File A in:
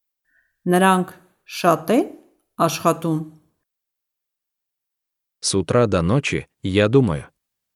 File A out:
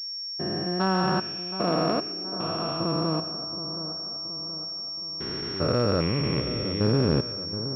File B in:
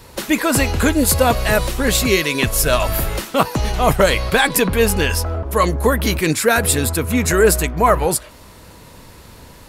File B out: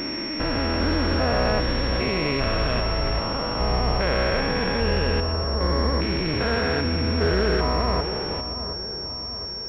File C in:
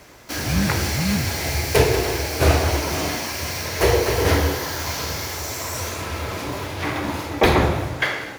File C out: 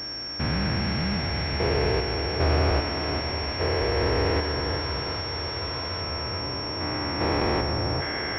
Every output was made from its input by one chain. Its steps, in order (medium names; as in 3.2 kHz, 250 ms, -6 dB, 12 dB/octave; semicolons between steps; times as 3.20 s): spectrogram pixelated in time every 400 ms; two-band feedback delay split 1.5 kHz, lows 723 ms, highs 118 ms, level -11 dB; class-D stage that switches slowly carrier 5.5 kHz; trim -2.5 dB